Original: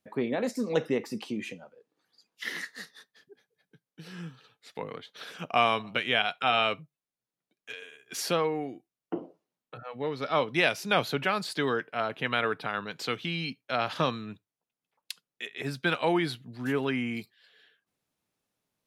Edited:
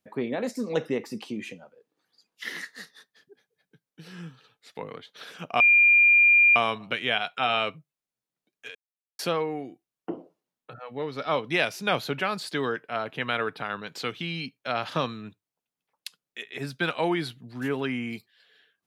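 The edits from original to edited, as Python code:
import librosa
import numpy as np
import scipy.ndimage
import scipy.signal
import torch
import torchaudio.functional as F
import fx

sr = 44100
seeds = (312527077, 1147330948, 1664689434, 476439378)

y = fx.edit(x, sr, fx.insert_tone(at_s=5.6, length_s=0.96, hz=2400.0, db=-14.0),
    fx.silence(start_s=7.79, length_s=0.44), tone=tone)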